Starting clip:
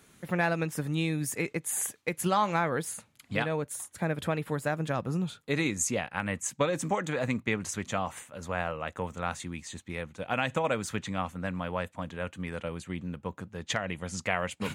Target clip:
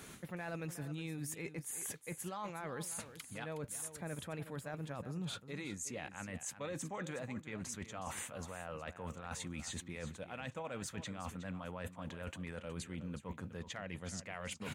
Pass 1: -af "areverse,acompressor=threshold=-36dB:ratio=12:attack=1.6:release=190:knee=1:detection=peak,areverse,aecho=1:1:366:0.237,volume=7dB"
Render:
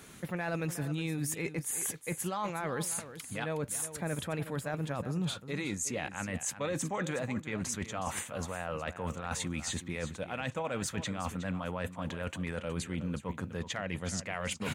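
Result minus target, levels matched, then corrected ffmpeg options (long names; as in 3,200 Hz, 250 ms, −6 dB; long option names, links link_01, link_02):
downward compressor: peak gain reduction −8 dB
-af "areverse,acompressor=threshold=-45dB:ratio=12:attack=1.6:release=190:knee=1:detection=peak,areverse,aecho=1:1:366:0.237,volume=7dB"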